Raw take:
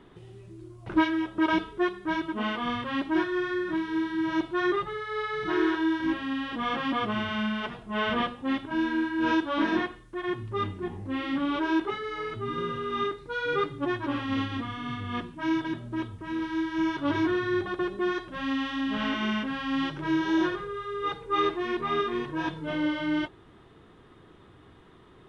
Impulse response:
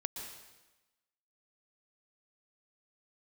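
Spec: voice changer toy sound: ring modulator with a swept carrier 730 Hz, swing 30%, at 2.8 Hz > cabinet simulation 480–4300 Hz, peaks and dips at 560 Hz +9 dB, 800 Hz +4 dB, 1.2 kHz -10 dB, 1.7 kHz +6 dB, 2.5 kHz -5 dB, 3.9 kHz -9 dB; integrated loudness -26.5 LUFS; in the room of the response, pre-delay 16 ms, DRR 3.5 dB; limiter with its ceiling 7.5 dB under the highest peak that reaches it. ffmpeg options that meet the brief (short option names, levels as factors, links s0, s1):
-filter_complex "[0:a]alimiter=limit=0.0891:level=0:latency=1,asplit=2[s0][s1];[1:a]atrim=start_sample=2205,adelay=16[s2];[s1][s2]afir=irnorm=-1:irlink=0,volume=0.631[s3];[s0][s3]amix=inputs=2:normalize=0,aeval=exprs='val(0)*sin(2*PI*730*n/s+730*0.3/2.8*sin(2*PI*2.8*n/s))':c=same,highpass=480,equalizer=f=560:t=q:w=4:g=9,equalizer=f=800:t=q:w=4:g=4,equalizer=f=1200:t=q:w=4:g=-10,equalizer=f=1700:t=q:w=4:g=6,equalizer=f=2500:t=q:w=4:g=-5,equalizer=f=3900:t=q:w=4:g=-9,lowpass=f=4300:w=0.5412,lowpass=f=4300:w=1.3066,volume=1.78"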